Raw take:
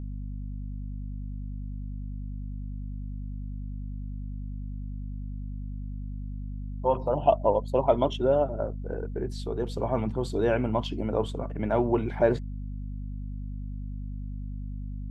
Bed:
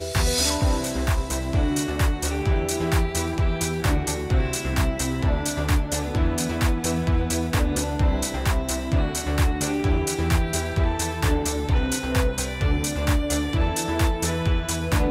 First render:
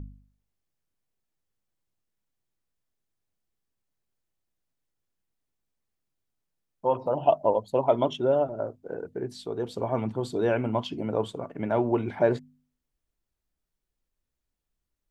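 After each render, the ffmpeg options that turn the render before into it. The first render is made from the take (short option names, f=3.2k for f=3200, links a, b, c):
-af "bandreject=f=50:t=h:w=4,bandreject=f=100:t=h:w=4,bandreject=f=150:t=h:w=4,bandreject=f=200:t=h:w=4,bandreject=f=250:t=h:w=4"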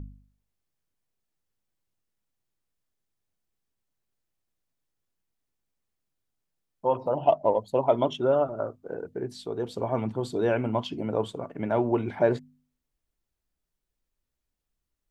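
-filter_complex "[0:a]asettb=1/sr,asplit=3[a][b][c];[a]atrim=end=7.154[d];[b]atrim=start=7.15:end=7.59,asetpts=PTS-STARTPTS,afade=t=in:d=0.004:c=qsin,afade=t=out:st=0.436:d=0.004:c=qsin,adynamicsmooth=sensitivity=7.5:basefreq=7.3k[e];[c]atrim=start=7.586[f];[d][e]acrossfade=d=0.004:c1=hsin:c2=qsin[g];[g][f]acrossfade=d=0.004:c1=qsin:c2=hsin,asettb=1/sr,asplit=3[h][i][j];[h]atrim=end=8.224[k];[i]atrim=start=8.22:end=8.87,asetpts=PTS-STARTPTS,afade=t=in:d=0.004:c=qsin,afade=t=out:st=0.646:d=0.004:c=qsin,equalizer=f=1.2k:t=o:w=0.33:g=11.5[l];[j]atrim=start=8.866[m];[k][l]acrossfade=d=0.004:c1=hsin:c2=qsin[n];[n][m]acrossfade=d=0.004:c1=qsin:c2=hsin"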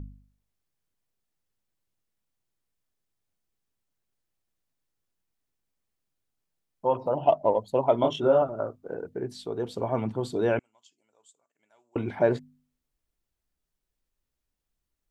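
-filter_complex "[0:a]asettb=1/sr,asplit=3[a][b][c];[a]atrim=end=8.014[d];[b]atrim=start=8.01:end=8.42,asetpts=PTS-STARTPTS,afade=t=in:d=0.004:c=qsin,afade=t=out:st=0.406:d=0.004:c=qsin,asplit=2[e][f];[f]adelay=26,volume=-3dB[g];[e][g]amix=inputs=2:normalize=0,atrim=end_sample=18081[h];[c]atrim=start=8.416[i];[d][h]acrossfade=d=0.004:c1=hsin:c2=qsin[j];[j][i]acrossfade=d=0.004:c1=qsin:c2=hsin,asettb=1/sr,asplit=3[k][l][m];[k]atrim=end=10.594[n];[l]atrim=start=10.59:end=11.96,asetpts=PTS-STARTPTS,afade=t=in:d=0.004:c=qsin,afade=t=out:st=1.366:d=0.004:c=qsin,bandpass=f=7.3k:t=q:w=7[o];[m]atrim=start=11.956[p];[n][o]acrossfade=d=0.004:c1=hsin:c2=qsin[q];[q][p]acrossfade=d=0.004:c1=qsin:c2=hsin"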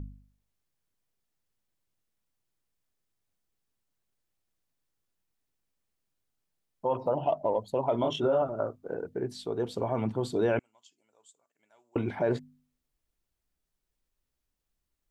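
-af "alimiter=limit=-17.5dB:level=0:latency=1:release=50"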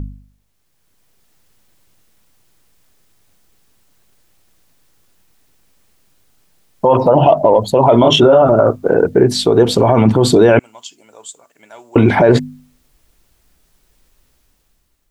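-af "dynaudnorm=f=260:g=7:m=12dB,alimiter=level_in=14dB:limit=-1dB:release=50:level=0:latency=1"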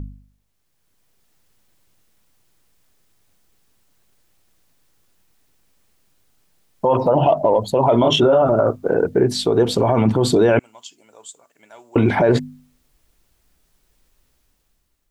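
-af "volume=-5.5dB"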